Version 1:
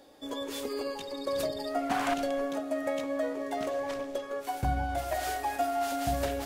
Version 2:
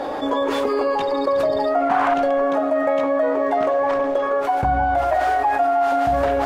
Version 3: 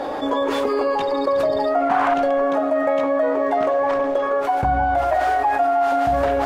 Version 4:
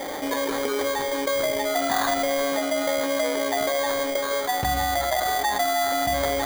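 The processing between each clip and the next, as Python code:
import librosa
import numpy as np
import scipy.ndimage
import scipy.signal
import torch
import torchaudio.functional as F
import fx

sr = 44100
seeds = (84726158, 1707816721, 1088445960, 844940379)

y1 = fx.lowpass(x, sr, hz=1900.0, slope=6)
y1 = fx.peak_eq(y1, sr, hz=1000.0, db=12.0, octaves=2.2)
y1 = fx.env_flatten(y1, sr, amount_pct=70)
y2 = y1
y3 = fx.sample_hold(y2, sr, seeds[0], rate_hz=2700.0, jitter_pct=0)
y3 = F.gain(torch.from_numpy(y3), -5.0).numpy()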